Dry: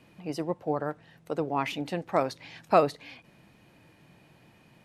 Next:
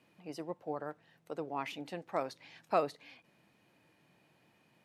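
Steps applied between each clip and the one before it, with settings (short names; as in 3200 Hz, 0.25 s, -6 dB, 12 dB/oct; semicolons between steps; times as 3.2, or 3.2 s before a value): HPF 220 Hz 6 dB/oct; gain -8.5 dB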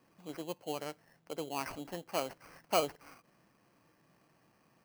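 sample-rate reducer 3600 Hz, jitter 0%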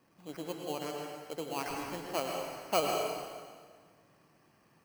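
plate-style reverb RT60 1.7 s, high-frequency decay 0.9×, pre-delay 90 ms, DRR 0.5 dB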